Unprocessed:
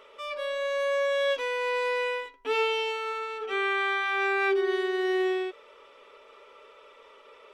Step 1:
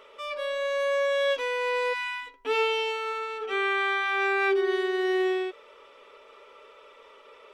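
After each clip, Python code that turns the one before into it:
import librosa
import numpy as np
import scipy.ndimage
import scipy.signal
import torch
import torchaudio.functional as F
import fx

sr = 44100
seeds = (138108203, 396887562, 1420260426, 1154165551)

y = fx.spec_erase(x, sr, start_s=1.93, length_s=0.34, low_hz=340.0, high_hz=980.0)
y = y * librosa.db_to_amplitude(1.0)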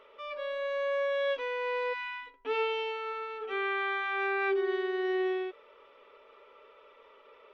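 y = scipy.ndimage.gaussian_filter1d(x, 2.0, mode='constant')
y = y * librosa.db_to_amplitude(-4.5)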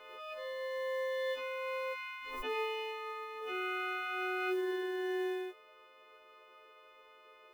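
y = fx.freq_snap(x, sr, grid_st=3)
y = fx.mod_noise(y, sr, seeds[0], snr_db=29)
y = fx.pre_swell(y, sr, db_per_s=40.0)
y = y * librosa.db_to_amplitude(-5.5)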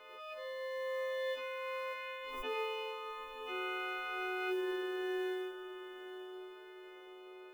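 y = fx.echo_diffused(x, sr, ms=913, feedback_pct=54, wet_db=-11.0)
y = y * librosa.db_to_amplitude(-2.0)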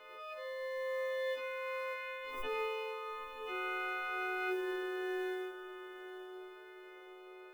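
y = fx.room_shoebox(x, sr, seeds[1], volume_m3=370.0, walls='furnished', distance_m=0.64)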